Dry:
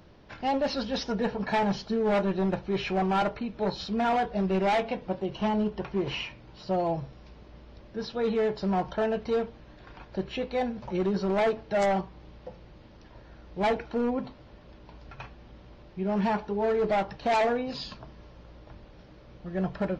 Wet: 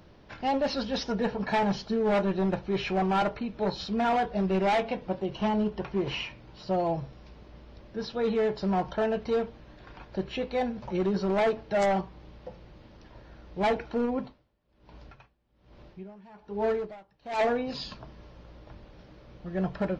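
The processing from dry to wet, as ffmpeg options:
ffmpeg -i in.wav -filter_complex "[0:a]asplit=3[link_01][link_02][link_03];[link_01]afade=type=out:start_time=14.05:duration=0.02[link_04];[link_02]aeval=exprs='val(0)*pow(10,-26*(0.5-0.5*cos(2*PI*1.2*n/s))/20)':channel_layout=same,afade=type=in:start_time=14.05:duration=0.02,afade=type=out:start_time=17.38:duration=0.02[link_05];[link_03]afade=type=in:start_time=17.38:duration=0.02[link_06];[link_04][link_05][link_06]amix=inputs=3:normalize=0" out.wav

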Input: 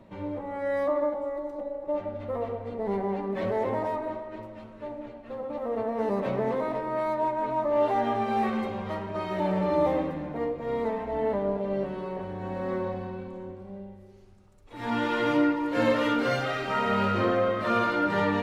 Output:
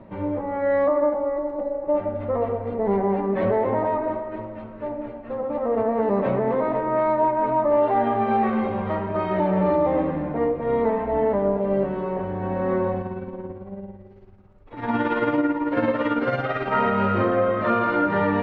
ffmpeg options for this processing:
ffmpeg -i in.wav -filter_complex "[0:a]asettb=1/sr,asplit=3[link_01][link_02][link_03];[link_01]atrim=end=13.014[link_04];[link_02]atrim=start=13.01:end=16.73,asetpts=PTS-STARTPTS,afade=type=in:duration=0.004:curve=qsin,afade=type=out:start_time=3.716:duration=0.004:curve=qsin,tremolo=f=18:d=0.52[link_05];[link_03]atrim=start=16.726[link_06];[link_04][link_05]acrossfade=duration=0.004:curve1=hsin:curve2=qsin[link_07];[link_07][link_06]acrossfade=duration=0.004:curve1=qsin:curve2=hsin,lowpass=2000,alimiter=limit=-19dB:level=0:latency=1:release=313,volume=7.5dB" out.wav

